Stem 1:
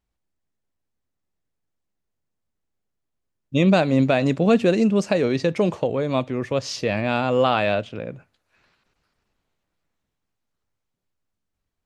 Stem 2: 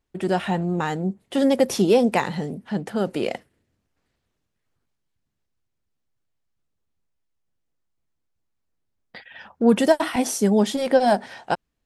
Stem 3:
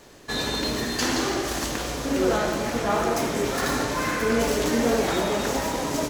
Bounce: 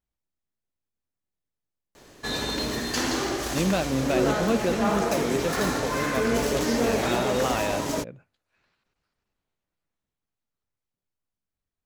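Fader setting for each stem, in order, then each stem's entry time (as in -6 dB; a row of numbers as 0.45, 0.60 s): -8.0 dB, off, -2.0 dB; 0.00 s, off, 1.95 s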